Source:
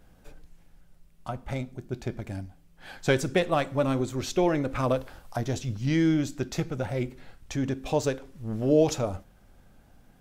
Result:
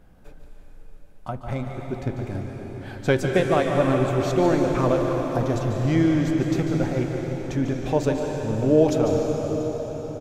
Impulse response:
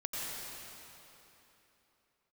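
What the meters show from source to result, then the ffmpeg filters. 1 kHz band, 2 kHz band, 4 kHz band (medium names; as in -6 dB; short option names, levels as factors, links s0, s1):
+5.5 dB, +3.5 dB, +0.5 dB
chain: -filter_complex "[0:a]highshelf=f=3000:g=-10,aecho=1:1:146:0.282,asplit=2[s0][s1];[1:a]atrim=start_sample=2205,asetrate=26019,aresample=44100,highshelf=f=10000:g=11[s2];[s1][s2]afir=irnorm=-1:irlink=0,volume=0.531[s3];[s0][s3]amix=inputs=2:normalize=0"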